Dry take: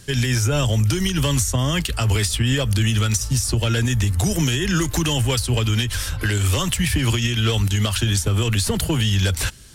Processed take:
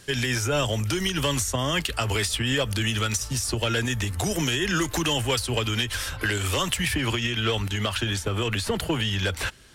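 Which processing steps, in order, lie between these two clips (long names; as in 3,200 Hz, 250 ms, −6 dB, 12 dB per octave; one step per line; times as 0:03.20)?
bass and treble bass −10 dB, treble −5 dB, from 0:06.93 treble −11 dB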